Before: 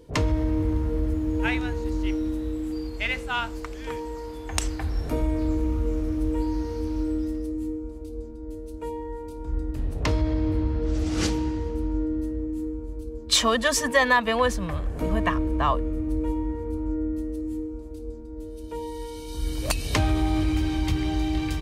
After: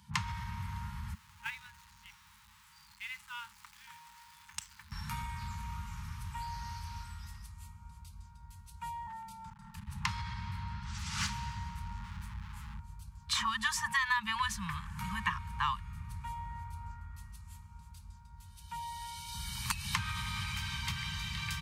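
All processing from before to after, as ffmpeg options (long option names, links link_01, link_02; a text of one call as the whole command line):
ffmpeg -i in.wav -filter_complex "[0:a]asettb=1/sr,asplit=3[link_01][link_02][link_03];[link_01]atrim=end=1.144[link_04];[link_02]atrim=start=1.14:end=4.92,asetpts=PTS-STARTPTS,afade=type=in:duration=0.004:curve=qsin,afade=type=out:start_time=3.776:duration=0.004:curve=qsin,aeval=exprs='val(0)+0.5*0.0266*sgn(val(0))':channel_layout=same,agate=range=-21dB:threshold=-20dB:ratio=16:release=100:detection=peak,tiltshelf=frequency=660:gain=-5.5[link_05];[link_03]atrim=start=4.916[link_06];[link_04][link_05]acrossfade=duration=0.004:curve1=hsin:curve2=qsin[link_07];[link_07][link_06]acrossfade=duration=0.004:curve1=qsin:curve2=hsin,asettb=1/sr,asplit=3[link_08][link_09][link_10];[link_08]atrim=end=9.074[link_11];[link_09]atrim=start=9.07:end=9.87,asetpts=PTS-STARTPTS,afade=type=in:duration=0.004:curve=qsin,afade=type=out:start_time=0.796:duration=0.004:curve=qsin,afreqshift=-41,acompressor=threshold=-27dB:ratio=2.5:attack=3.2:release=140:knee=1:detection=peak,asoftclip=type=hard:threshold=-27.5dB[link_12];[link_10]atrim=start=9.866[link_13];[link_11][link_12]acrossfade=duration=0.004:curve1=hsin:curve2=qsin[link_14];[link_14][link_13]acrossfade=duration=0.004:curve1=qsin:curve2=hsin,asettb=1/sr,asplit=3[link_15][link_16][link_17];[link_15]atrim=end=11.204[link_18];[link_16]atrim=start=11.2:end=12.8,asetpts=PTS-STARTPTS,afade=type=in:duration=0.004:curve=qsin,afade=type=out:start_time=1.596:duration=0.004:curve=qsin,lowshelf=frequency=150:gain=7.5,aeval=exprs='sgn(val(0))*max(abs(val(0))-0.00631,0)':channel_layout=same[link_19];[link_17]atrim=start=12.796[link_20];[link_18][link_19]acrossfade=duration=0.004:curve1=hsin:curve2=qsin[link_21];[link_21][link_20]acrossfade=duration=0.004:curve1=qsin:curve2=hsin,afftfilt=real='re*(1-between(b*sr/4096,220,820))':imag='im*(1-between(b*sr/4096,220,820))':win_size=4096:overlap=0.75,highpass=110,acrossover=split=140|830|1900[link_22][link_23][link_24][link_25];[link_22]acompressor=threshold=-41dB:ratio=4[link_26];[link_23]acompressor=threshold=-47dB:ratio=4[link_27];[link_24]acompressor=threshold=-34dB:ratio=4[link_28];[link_25]acompressor=threshold=-36dB:ratio=4[link_29];[link_26][link_27][link_28][link_29]amix=inputs=4:normalize=0" out.wav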